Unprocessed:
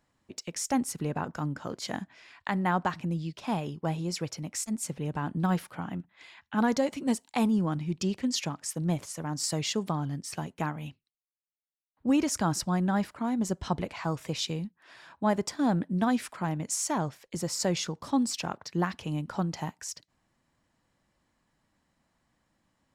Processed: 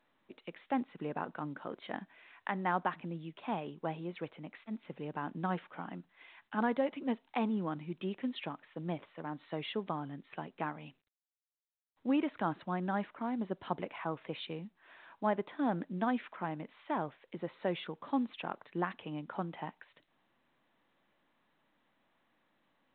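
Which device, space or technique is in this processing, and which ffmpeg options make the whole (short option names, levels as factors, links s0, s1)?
telephone: -af "highpass=250,lowpass=3200,volume=0.631" -ar 8000 -c:a pcm_mulaw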